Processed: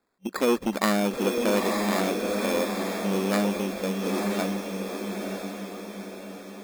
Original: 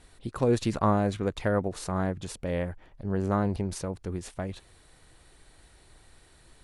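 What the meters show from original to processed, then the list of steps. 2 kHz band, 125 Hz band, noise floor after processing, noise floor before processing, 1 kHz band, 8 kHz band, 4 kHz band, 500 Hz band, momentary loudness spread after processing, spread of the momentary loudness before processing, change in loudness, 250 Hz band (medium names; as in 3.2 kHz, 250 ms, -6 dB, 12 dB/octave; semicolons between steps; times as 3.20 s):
+9.0 dB, -4.5 dB, -43 dBFS, -58 dBFS, +3.0 dB, +7.5 dB, +10.5 dB, +4.5 dB, 13 LU, 12 LU, +3.0 dB, +4.5 dB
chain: gate -44 dBFS, range -23 dB; FFT band-pass 190–3500 Hz; in parallel at +1 dB: compression, threshold -38 dBFS, peak gain reduction 17 dB; on the sum: sample-and-hold 15×; on a send: echo that smears into a reverb 926 ms, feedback 50%, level -4 dB; on the sum: transformer saturation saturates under 920 Hz; trim +2.5 dB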